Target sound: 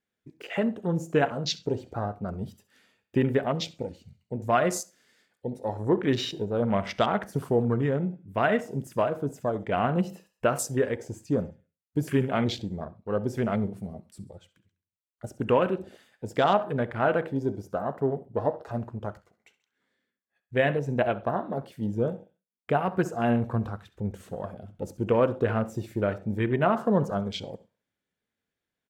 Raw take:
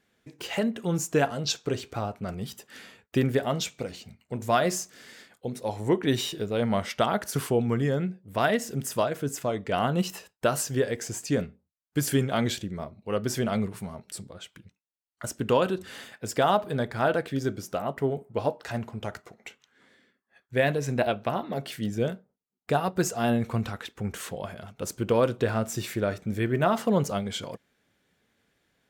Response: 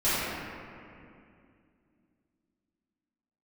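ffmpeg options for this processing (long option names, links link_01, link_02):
-filter_complex "[0:a]aecho=1:1:67|134|201|268:0.141|0.072|0.0367|0.0187,afwtdn=0.0158,asplit=2[link_01][link_02];[1:a]atrim=start_sample=2205,atrim=end_sample=4410,asetrate=41454,aresample=44100[link_03];[link_02][link_03]afir=irnorm=-1:irlink=0,volume=-28dB[link_04];[link_01][link_04]amix=inputs=2:normalize=0"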